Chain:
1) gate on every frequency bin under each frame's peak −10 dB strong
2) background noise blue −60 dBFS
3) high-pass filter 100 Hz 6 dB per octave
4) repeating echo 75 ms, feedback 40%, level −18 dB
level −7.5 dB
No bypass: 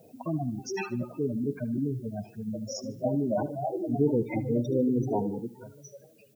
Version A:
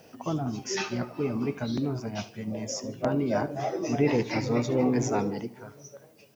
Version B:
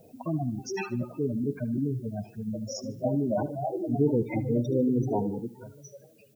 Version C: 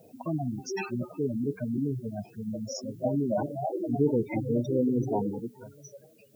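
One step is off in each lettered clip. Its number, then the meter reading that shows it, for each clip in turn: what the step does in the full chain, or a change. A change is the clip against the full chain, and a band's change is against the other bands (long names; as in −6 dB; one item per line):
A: 1, 4 kHz band +7.5 dB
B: 3, 125 Hz band +2.0 dB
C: 4, echo-to-direct ratio −17.0 dB to none audible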